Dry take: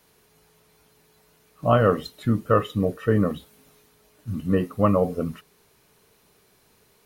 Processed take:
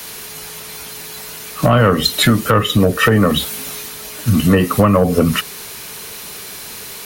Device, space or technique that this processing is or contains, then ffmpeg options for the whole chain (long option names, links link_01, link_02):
mastering chain: -filter_complex "[0:a]equalizer=frequency=220:width_type=o:width=0.37:gain=2.5,acrossover=split=130|330[link_01][link_02][link_03];[link_01]acompressor=threshold=-31dB:ratio=4[link_04];[link_02]acompressor=threshold=-32dB:ratio=4[link_05];[link_03]acompressor=threshold=-31dB:ratio=4[link_06];[link_04][link_05][link_06]amix=inputs=3:normalize=0,acompressor=threshold=-32dB:ratio=2,asoftclip=type=tanh:threshold=-23dB,tiltshelf=frequency=1200:gain=-6,alimiter=level_in=27.5dB:limit=-1dB:release=50:level=0:latency=1,volume=-1dB"